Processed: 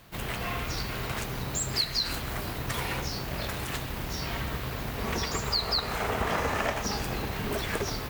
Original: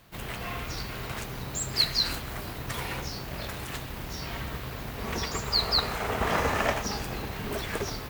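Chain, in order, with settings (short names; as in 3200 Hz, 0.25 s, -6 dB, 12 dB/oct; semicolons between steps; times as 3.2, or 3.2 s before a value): compressor 3:1, threshold -29 dBFS, peak gain reduction 8 dB; gain +3 dB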